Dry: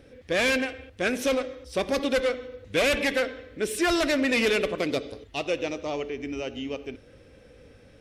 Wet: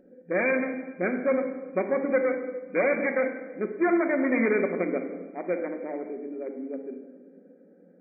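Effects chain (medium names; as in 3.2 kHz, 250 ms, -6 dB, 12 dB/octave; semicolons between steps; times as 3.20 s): local Wiener filter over 41 samples; FFT band-pass 170–2400 Hz; simulated room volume 1100 m³, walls mixed, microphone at 1 m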